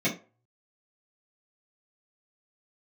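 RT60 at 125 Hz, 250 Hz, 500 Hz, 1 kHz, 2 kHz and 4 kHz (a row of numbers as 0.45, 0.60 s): 0.50, 0.25, 0.35, 0.35, 0.25, 0.20 s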